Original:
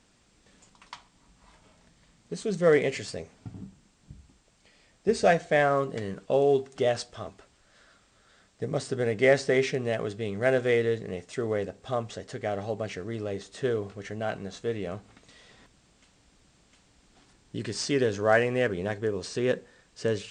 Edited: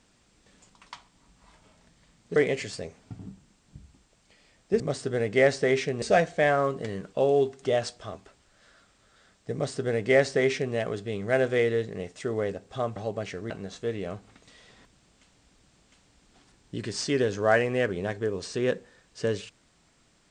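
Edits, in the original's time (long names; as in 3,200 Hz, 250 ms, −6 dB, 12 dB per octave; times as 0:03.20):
0:02.36–0:02.71: remove
0:08.66–0:09.88: duplicate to 0:05.15
0:12.09–0:12.59: remove
0:13.13–0:14.31: remove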